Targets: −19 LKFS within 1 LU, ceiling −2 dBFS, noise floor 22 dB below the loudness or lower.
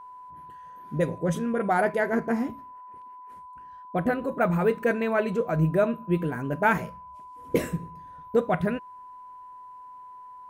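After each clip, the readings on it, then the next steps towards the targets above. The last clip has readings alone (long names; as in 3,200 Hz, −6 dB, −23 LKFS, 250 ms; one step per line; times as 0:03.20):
interfering tone 1,000 Hz; level of the tone −42 dBFS; integrated loudness −26.5 LKFS; sample peak −10.0 dBFS; target loudness −19.0 LKFS
→ notch filter 1,000 Hz, Q 30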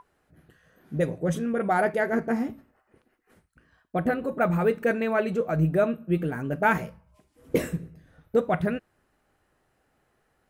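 interfering tone none found; integrated loudness −26.5 LKFS; sample peak −10.0 dBFS; target loudness −19.0 LKFS
→ level +7.5 dB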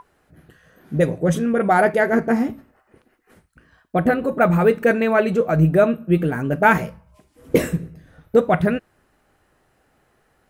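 integrated loudness −19.0 LKFS; sample peak −2.5 dBFS; background noise floor −64 dBFS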